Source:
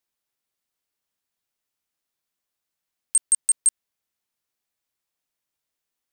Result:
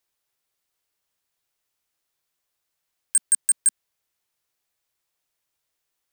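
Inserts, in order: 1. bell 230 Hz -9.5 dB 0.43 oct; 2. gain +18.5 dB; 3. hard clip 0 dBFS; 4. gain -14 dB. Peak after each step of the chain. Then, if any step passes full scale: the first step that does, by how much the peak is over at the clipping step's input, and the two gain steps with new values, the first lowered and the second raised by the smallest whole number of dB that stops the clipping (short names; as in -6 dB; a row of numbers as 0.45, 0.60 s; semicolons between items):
-12.0, +6.5, 0.0, -14.0 dBFS; step 2, 6.5 dB; step 2 +11.5 dB, step 4 -7 dB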